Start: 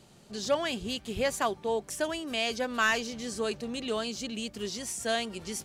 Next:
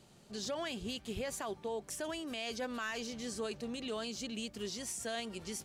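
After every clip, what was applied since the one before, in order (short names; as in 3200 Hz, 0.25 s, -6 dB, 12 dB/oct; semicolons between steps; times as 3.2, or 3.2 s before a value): limiter -25.5 dBFS, peak gain reduction 9.5 dB; gain -4.5 dB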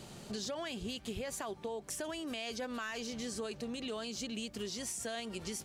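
compressor 4:1, threshold -51 dBFS, peak gain reduction 14 dB; gain +11.5 dB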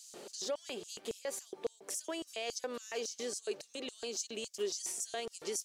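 LFO high-pass square 3.6 Hz 410–6100 Hz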